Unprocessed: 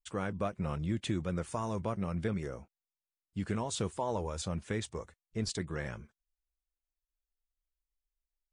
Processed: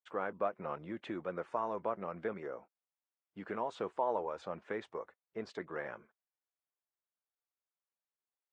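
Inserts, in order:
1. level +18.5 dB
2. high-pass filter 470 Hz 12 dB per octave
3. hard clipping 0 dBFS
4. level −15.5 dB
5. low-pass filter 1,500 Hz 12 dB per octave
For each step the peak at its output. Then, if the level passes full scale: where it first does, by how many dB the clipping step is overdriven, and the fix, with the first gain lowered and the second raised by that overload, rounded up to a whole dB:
−0.5, −4.5, −4.5, −20.0, −20.5 dBFS
no step passes full scale

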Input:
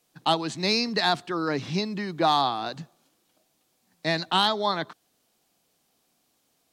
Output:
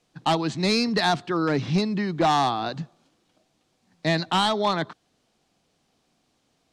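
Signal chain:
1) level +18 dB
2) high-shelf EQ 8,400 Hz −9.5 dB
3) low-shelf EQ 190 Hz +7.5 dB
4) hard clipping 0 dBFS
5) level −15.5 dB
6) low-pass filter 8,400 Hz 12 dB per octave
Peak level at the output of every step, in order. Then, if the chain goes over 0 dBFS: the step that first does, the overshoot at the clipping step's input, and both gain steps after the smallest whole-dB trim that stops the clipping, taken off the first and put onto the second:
+7.0, +7.0, +8.5, 0.0, −15.5, −14.5 dBFS
step 1, 8.5 dB
step 1 +9 dB, step 5 −6.5 dB

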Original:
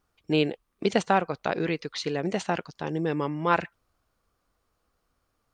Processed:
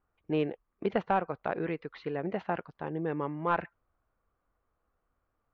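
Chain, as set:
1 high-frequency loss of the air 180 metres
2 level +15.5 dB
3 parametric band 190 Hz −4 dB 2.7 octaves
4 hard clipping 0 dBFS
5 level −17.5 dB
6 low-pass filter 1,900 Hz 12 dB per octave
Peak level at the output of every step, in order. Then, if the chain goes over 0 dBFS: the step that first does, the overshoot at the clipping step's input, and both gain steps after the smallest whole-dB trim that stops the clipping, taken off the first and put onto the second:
−8.5, +7.0, +6.0, 0.0, −17.5, −17.0 dBFS
step 2, 6.0 dB
step 2 +9.5 dB, step 5 −11.5 dB

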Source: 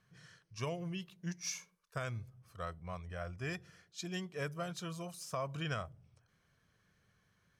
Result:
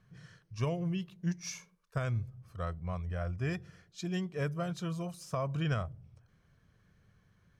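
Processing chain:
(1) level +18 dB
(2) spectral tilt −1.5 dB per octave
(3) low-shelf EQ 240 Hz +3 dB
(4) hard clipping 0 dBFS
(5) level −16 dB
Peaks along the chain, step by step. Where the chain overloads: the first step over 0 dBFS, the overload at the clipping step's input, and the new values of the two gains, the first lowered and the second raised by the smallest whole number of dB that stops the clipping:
−7.5, −4.5, −3.0, −3.0, −19.0 dBFS
no step passes full scale

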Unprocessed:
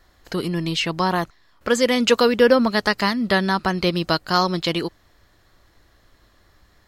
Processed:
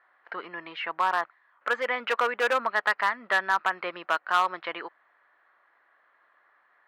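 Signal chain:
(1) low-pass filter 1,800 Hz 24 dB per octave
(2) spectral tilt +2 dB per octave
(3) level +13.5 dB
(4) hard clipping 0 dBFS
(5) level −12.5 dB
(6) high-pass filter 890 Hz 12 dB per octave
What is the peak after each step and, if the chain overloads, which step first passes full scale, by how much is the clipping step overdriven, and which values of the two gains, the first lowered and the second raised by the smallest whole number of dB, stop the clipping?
−4.0, −5.5, +8.0, 0.0, −12.5, −9.5 dBFS
step 3, 8.0 dB
step 3 +5.5 dB, step 5 −4.5 dB

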